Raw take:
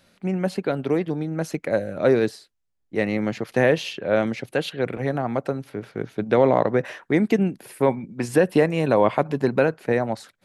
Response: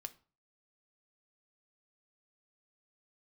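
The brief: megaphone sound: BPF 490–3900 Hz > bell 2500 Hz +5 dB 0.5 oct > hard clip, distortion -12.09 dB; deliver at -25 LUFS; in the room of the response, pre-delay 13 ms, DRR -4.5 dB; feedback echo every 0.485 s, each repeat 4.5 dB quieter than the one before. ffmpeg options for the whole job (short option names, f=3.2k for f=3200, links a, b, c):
-filter_complex "[0:a]aecho=1:1:485|970|1455|1940|2425|2910|3395|3880|4365:0.596|0.357|0.214|0.129|0.0772|0.0463|0.0278|0.0167|0.01,asplit=2[a][b];[1:a]atrim=start_sample=2205,adelay=13[c];[b][c]afir=irnorm=-1:irlink=0,volume=8.5dB[d];[a][d]amix=inputs=2:normalize=0,highpass=490,lowpass=3.9k,equalizer=f=2.5k:t=o:w=0.5:g=5,asoftclip=type=hard:threshold=-12dB,volume=-5dB"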